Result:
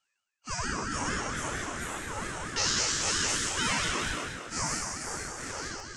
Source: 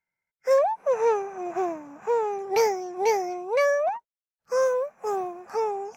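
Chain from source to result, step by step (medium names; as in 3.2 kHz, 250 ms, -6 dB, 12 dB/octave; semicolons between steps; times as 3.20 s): spectral sustain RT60 2.02 s; steep low-pass 8.2 kHz 96 dB/octave; differentiator; reverse; upward compressor, threshold -48 dBFS; reverse; Schroeder reverb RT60 1 s, combs from 32 ms, DRR 3.5 dB; ever faster or slower copies 486 ms, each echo +2 st, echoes 3; ring modulator with a swept carrier 590 Hz, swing 40%, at 4.4 Hz; trim +7 dB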